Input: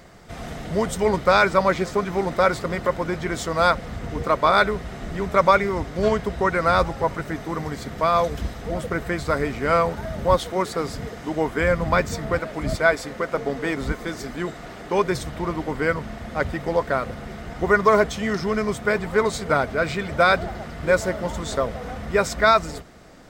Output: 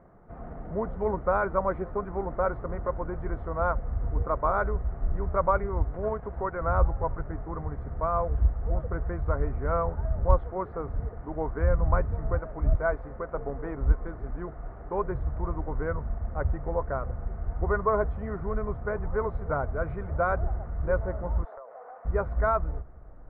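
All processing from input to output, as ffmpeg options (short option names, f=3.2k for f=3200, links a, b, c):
-filter_complex "[0:a]asettb=1/sr,asplit=3[a][b][c];[a]atrim=end=5.944[d];[b]atrim=start=5.94:end=6.61,asetpts=PTS-STARTPTS,afade=t=in:d=0.004:c=qsin,afade=t=out:st=0.666:d=0.004:c=qsin,highpass=f=170:p=1,aeval=exprs='sgn(val(0))*max(abs(val(0))-0.00841,0)':c=same,acompressor=mode=upward:threshold=-23dB:ratio=2.5:attack=3.2:release=140:knee=2.83:detection=peak[e];[c]atrim=start=6.606[f];[d][e]acrossfade=d=0.004:c1=hsin:c2=qsin[g];[g][f]acrossfade=d=0.004:c1=qsin:c2=hsin,asettb=1/sr,asplit=3[h][i][j];[h]atrim=end=21.444[k];[i]atrim=start=21.44:end=22.05,asetpts=PTS-STARTPTS,afade=t=in:d=0.004:c=qsin,afade=t=out:st=0.606:d=0.004:c=qsin,highpass=f=580:w=0.5412,highpass=f=580:w=1.3066,aemphasis=mode=reproduction:type=riaa,acompressor=threshold=-31dB:ratio=16:attack=3.2:release=140:knee=1:detection=peak[l];[j]atrim=start=22.046[m];[k][l]acrossfade=d=0.004:c1=hsin:c2=qsin[n];[n][m]acrossfade=d=0.004:c1=qsin:c2=hsin,lowpass=f=1.3k:w=0.5412,lowpass=f=1.3k:w=1.3066,asubboost=boost=10:cutoff=65,volume=-7dB"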